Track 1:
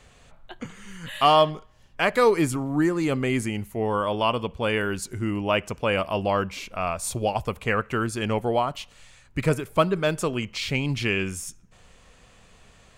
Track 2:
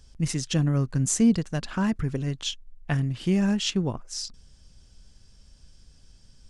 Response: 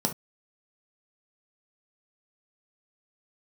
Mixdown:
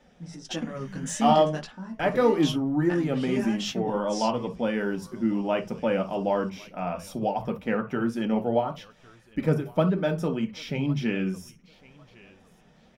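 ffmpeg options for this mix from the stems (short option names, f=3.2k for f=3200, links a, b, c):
-filter_complex "[0:a]equalizer=f=8.2k:t=o:w=0.69:g=-11.5,volume=-8dB,asplit=4[a][b][c][d];[b]volume=-4dB[e];[c]volume=-16dB[f];[1:a]asplit=2[g][h];[h]highpass=f=720:p=1,volume=12dB,asoftclip=type=tanh:threshold=-11dB[i];[g][i]amix=inputs=2:normalize=0,lowpass=f=4.6k:p=1,volume=-6dB,flanger=delay=16.5:depth=3.1:speed=0.52,volume=-1.5dB,asplit=2[j][k];[k]volume=-20.5dB[l];[d]apad=whole_len=286479[m];[j][m]sidechaingate=range=-33dB:threshold=-53dB:ratio=16:detection=peak[n];[2:a]atrim=start_sample=2205[o];[e][l]amix=inputs=2:normalize=0[p];[p][o]afir=irnorm=-1:irlink=0[q];[f]aecho=0:1:1105|2210|3315|4420:1|0.26|0.0676|0.0176[r];[a][n][q][r]amix=inputs=4:normalize=0,flanger=delay=3.4:depth=3.6:regen=-46:speed=1.7:shape=sinusoidal"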